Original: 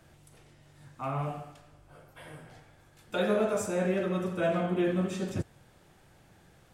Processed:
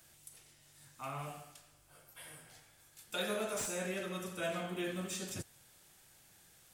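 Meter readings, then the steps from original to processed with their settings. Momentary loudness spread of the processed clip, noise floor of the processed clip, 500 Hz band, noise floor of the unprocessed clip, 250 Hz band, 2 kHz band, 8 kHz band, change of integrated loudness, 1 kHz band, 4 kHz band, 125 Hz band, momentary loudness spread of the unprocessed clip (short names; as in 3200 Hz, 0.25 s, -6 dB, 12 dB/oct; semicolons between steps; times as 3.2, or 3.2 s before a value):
22 LU, -65 dBFS, -10.5 dB, -60 dBFS, -12.0 dB, -4.0 dB, +3.0 dB, -9.5 dB, -8.0 dB, +1.0 dB, -12.0 dB, 20 LU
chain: pre-emphasis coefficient 0.9; slew limiter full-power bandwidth 39 Hz; gain +7.5 dB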